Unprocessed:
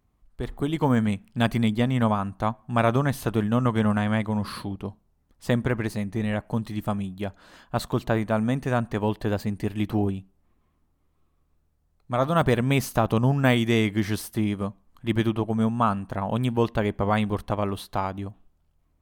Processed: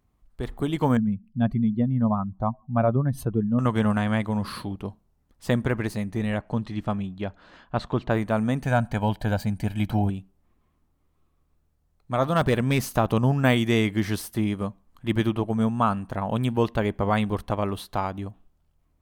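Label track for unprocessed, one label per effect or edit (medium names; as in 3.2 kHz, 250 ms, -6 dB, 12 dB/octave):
0.970000	3.590000	spectral contrast enhancement exponent 1.9
6.380000	8.090000	low-pass 5.7 kHz -> 3.3 kHz
8.630000	10.100000	comb 1.3 ms
12.290000	12.970000	hard clipper -14 dBFS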